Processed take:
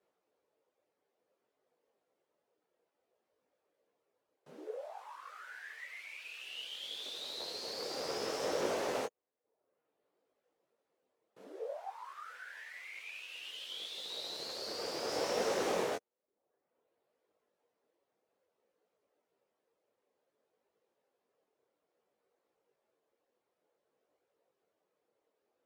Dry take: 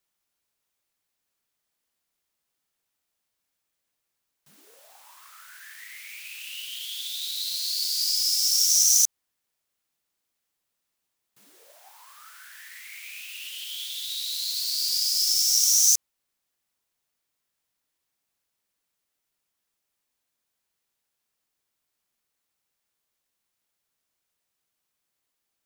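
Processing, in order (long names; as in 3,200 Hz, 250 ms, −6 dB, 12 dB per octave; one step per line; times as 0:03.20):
reverb reduction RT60 0.96 s
sine wavefolder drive 19 dB, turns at −7.5 dBFS
0:15.09–0:15.82: leveller curve on the samples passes 1
resonant band-pass 480 Hz, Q 3
micro pitch shift up and down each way 20 cents
level +1.5 dB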